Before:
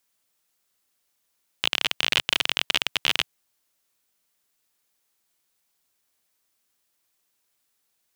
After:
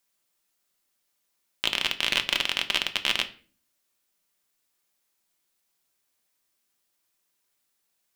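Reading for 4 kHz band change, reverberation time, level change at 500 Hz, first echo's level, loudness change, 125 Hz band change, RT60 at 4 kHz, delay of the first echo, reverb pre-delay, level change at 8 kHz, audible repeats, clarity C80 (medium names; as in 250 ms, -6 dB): -2.0 dB, 0.40 s, -1.5 dB, no echo, -2.0 dB, -2.0 dB, 0.35 s, no echo, 3 ms, -2.0 dB, no echo, 20.0 dB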